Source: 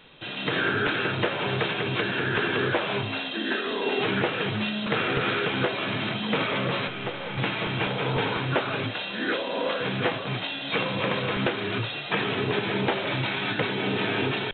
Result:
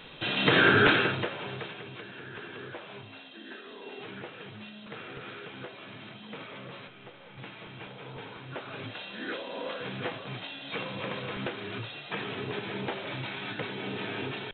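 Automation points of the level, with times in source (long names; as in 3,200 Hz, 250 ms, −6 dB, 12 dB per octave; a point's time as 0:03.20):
0:00.92 +4.5 dB
0:01.28 −8 dB
0:02.00 −17 dB
0:08.40 −17 dB
0:08.94 −9 dB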